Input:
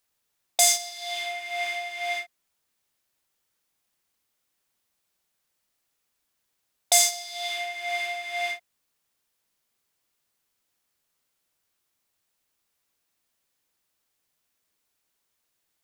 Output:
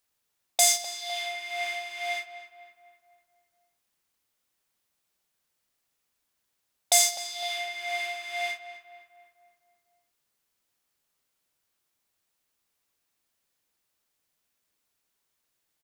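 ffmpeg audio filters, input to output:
ffmpeg -i in.wav -filter_complex "[0:a]asplit=2[link_01][link_02];[link_02]adelay=254,lowpass=frequency=2300:poles=1,volume=-11dB,asplit=2[link_03][link_04];[link_04]adelay=254,lowpass=frequency=2300:poles=1,volume=0.54,asplit=2[link_05][link_06];[link_06]adelay=254,lowpass=frequency=2300:poles=1,volume=0.54,asplit=2[link_07][link_08];[link_08]adelay=254,lowpass=frequency=2300:poles=1,volume=0.54,asplit=2[link_09][link_10];[link_10]adelay=254,lowpass=frequency=2300:poles=1,volume=0.54,asplit=2[link_11][link_12];[link_12]adelay=254,lowpass=frequency=2300:poles=1,volume=0.54[link_13];[link_01][link_03][link_05][link_07][link_09][link_11][link_13]amix=inputs=7:normalize=0,volume=-1.5dB" out.wav

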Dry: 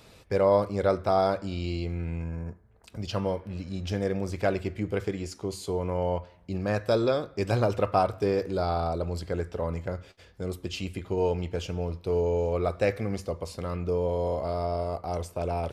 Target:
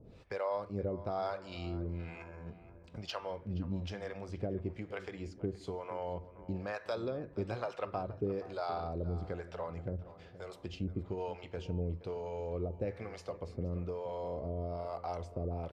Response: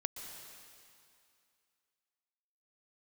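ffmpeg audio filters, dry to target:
-filter_complex "[0:a]asettb=1/sr,asplit=3[link_01][link_02][link_03];[link_01]atrim=end=1.524[link_04];[link_02]atrim=start=1.52:end=2.23,asetpts=PTS-STARTPTS,afade=type=in:duration=0.004:curve=qsin,afade=type=out:start_time=0.706:duration=0.004:curve=qsin,tiltshelf=frequency=720:gain=-5[link_05];[link_03]atrim=start=2.226[link_06];[link_04][link_05]acrossfade=duration=0.004:curve1=hsin:curve2=qsin[link_07];[link_07][link_06]acrossfade=duration=0.004:curve1=qsin:curve2=hsin,acompressor=threshold=-34dB:ratio=2.5,acrossover=split=530[link_08][link_09];[link_08]aeval=exprs='val(0)*(1-1/2+1/2*cos(2*PI*1.1*n/s))':channel_layout=same[link_10];[link_09]aeval=exprs='val(0)*(1-1/2-1/2*cos(2*PI*1.1*n/s))':channel_layout=same[link_11];[link_10][link_11]amix=inputs=2:normalize=0,adynamicsmooth=sensitivity=3:basefreq=5400,asplit=2[link_12][link_13];[link_13]adelay=474,lowpass=frequency=2600:poles=1,volume=-15.5dB,asplit=2[link_14][link_15];[link_15]adelay=474,lowpass=frequency=2600:poles=1,volume=0.52,asplit=2[link_16][link_17];[link_17]adelay=474,lowpass=frequency=2600:poles=1,volume=0.52,asplit=2[link_18][link_19];[link_19]adelay=474,lowpass=frequency=2600:poles=1,volume=0.52,asplit=2[link_20][link_21];[link_21]adelay=474,lowpass=frequency=2600:poles=1,volume=0.52[link_22];[link_14][link_16][link_18][link_20][link_22]amix=inputs=5:normalize=0[link_23];[link_12][link_23]amix=inputs=2:normalize=0,volume=2dB"

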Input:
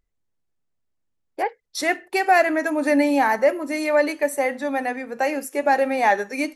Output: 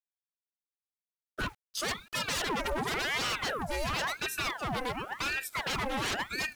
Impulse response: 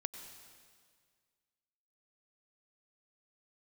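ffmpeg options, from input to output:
-af "acrusher=bits=8:mix=0:aa=0.000001,aeval=exprs='0.0891*(abs(mod(val(0)/0.0891+3,4)-2)-1)':channel_layout=same,aeval=exprs='val(0)*sin(2*PI*1200*n/s+1200*0.8/0.93*sin(2*PI*0.93*n/s))':channel_layout=same,volume=-3dB"

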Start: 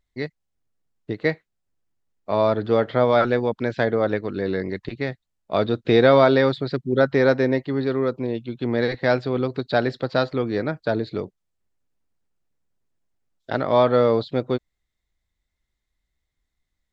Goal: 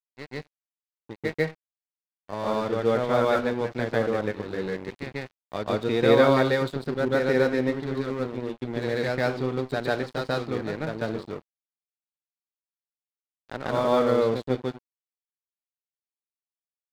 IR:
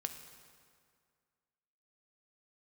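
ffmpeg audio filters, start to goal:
-filter_complex "[0:a]bandreject=frequency=660:width=21,asplit=2[link_01][link_02];[1:a]atrim=start_sample=2205,atrim=end_sample=4410,adelay=143[link_03];[link_02][link_03]afir=irnorm=-1:irlink=0,volume=5dB[link_04];[link_01][link_04]amix=inputs=2:normalize=0,aeval=exprs='sgn(val(0))*max(abs(val(0))-0.0355,0)':channel_layout=same,volume=-8dB"

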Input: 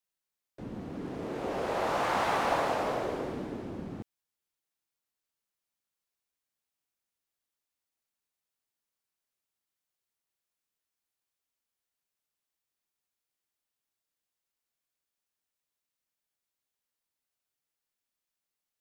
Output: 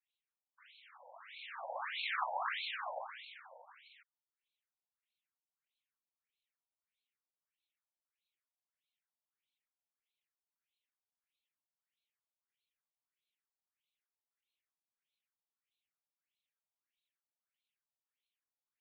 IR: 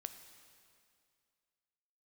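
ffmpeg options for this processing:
-af "afftfilt=real='hypot(re,im)*cos(2*PI*random(0))':imag='hypot(re,im)*sin(2*PI*random(1))':win_size=512:overlap=0.75,aderivative,afftfilt=real='re*between(b*sr/1024,670*pow(3100/670,0.5+0.5*sin(2*PI*1.6*pts/sr))/1.41,670*pow(3100/670,0.5+0.5*sin(2*PI*1.6*pts/sr))*1.41)':imag='im*between(b*sr/1024,670*pow(3100/670,0.5+0.5*sin(2*PI*1.6*pts/sr))/1.41,670*pow(3100/670,0.5+0.5*sin(2*PI*1.6*pts/sr))*1.41)':win_size=1024:overlap=0.75,volume=18dB"

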